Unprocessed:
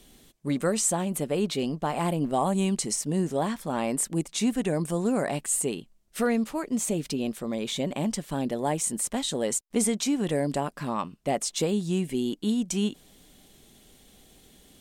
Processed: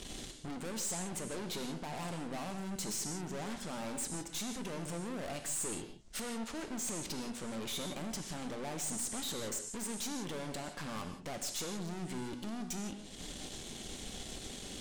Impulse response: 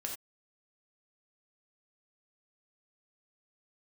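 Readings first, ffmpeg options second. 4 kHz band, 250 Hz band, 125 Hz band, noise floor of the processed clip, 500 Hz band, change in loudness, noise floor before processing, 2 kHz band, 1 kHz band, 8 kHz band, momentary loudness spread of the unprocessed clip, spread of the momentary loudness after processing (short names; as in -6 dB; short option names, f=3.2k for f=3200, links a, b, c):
-6.5 dB, -14.0 dB, -12.5 dB, -49 dBFS, -14.5 dB, -12.0 dB, -59 dBFS, -7.5 dB, -12.5 dB, -8.5 dB, 6 LU, 7 LU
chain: -filter_complex "[0:a]lowpass=f=7.5k:w=0.5412,lowpass=f=7.5k:w=1.3066,acompressor=threshold=-44dB:ratio=3,aeval=exprs='(tanh(501*val(0)+0.8)-tanh(0.8))/501':c=same,asplit=2[a][b];[1:a]atrim=start_sample=2205,asetrate=23814,aresample=44100,highshelf=f=5.2k:g=11.5[c];[b][c]afir=irnorm=-1:irlink=0,volume=-5dB[d];[a][d]amix=inputs=2:normalize=0,volume=10dB"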